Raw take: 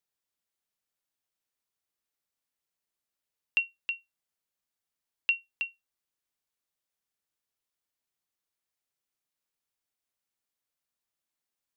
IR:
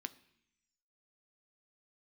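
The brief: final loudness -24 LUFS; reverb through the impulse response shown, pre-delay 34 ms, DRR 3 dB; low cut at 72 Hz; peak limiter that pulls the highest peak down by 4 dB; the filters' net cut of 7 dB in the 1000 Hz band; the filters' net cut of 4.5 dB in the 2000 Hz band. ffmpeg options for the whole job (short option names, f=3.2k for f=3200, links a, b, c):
-filter_complex "[0:a]highpass=72,equalizer=f=1k:t=o:g=-7,equalizer=f=2k:t=o:g=-7,alimiter=limit=-23.5dB:level=0:latency=1,asplit=2[a][b];[1:a]atrim=start_sample=2205,adelay=34[c];[b][c]afir=irnorm=-1:irlink=0,volume=-0.5dB[d];[a][d]amix=inputs=2:normalize=0,volume=12.5dB"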